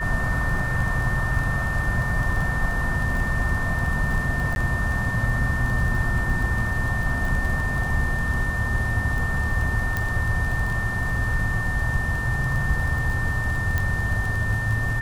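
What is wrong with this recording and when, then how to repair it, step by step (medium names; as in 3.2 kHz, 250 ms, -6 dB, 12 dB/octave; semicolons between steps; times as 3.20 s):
crackle 23 per s -27 dBFS
whine 1.8 kHz -27 dBFS
4.55–4.56 s: dropout 11 ms
9.97 s: pop -11 dBFS
13.78 s: pop -11 dBFS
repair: de-click; band-stop 1.8 kHz, Q 30; interpolate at 4.55 s, 11 ms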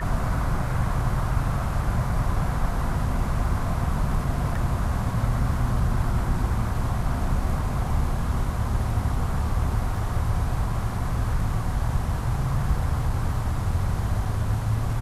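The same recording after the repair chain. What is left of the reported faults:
9.97 s: pop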